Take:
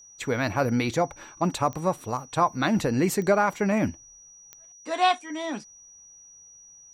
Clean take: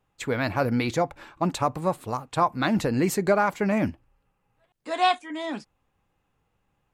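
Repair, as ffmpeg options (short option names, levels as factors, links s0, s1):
-af "adeclick=t=4,bandreject=f=5800:w=30"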